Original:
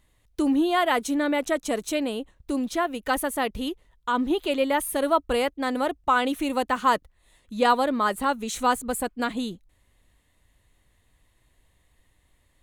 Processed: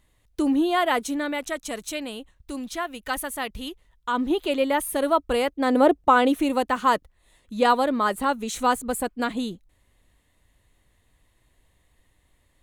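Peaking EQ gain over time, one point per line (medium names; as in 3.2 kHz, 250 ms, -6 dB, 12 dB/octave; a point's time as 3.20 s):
peaking EQ 390 Hz 2.5 oct
0.94 s +0.5 dB
1.45 s -7.5 dB
3.62 s -7.5 dB
4.31 s +1 dB
5.46 s +1 dB
5.88 s +12.5 dB
6.66 s +1.5 dB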